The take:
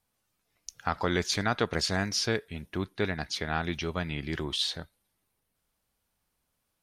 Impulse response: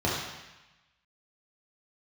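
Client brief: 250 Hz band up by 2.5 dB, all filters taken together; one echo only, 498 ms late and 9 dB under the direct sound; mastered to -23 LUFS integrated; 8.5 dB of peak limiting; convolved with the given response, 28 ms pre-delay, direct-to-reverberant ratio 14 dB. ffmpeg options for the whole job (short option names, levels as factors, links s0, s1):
-filter_complex "[0:a]equalizer=f=250:t=o:g=3.5,alimiter=limit=0.106:level=0:latency=1,aecho=1:1:498:0.355,asplit=2[s0][s1];[1:a]atrim=start_sample=2205,adelay=28[s2];[s1][s2]afir=irnorm=-1:irlink=0,volume=0.0473[s3];[s0][s3]amix=inputs=2:normalize=0,volume=2.99"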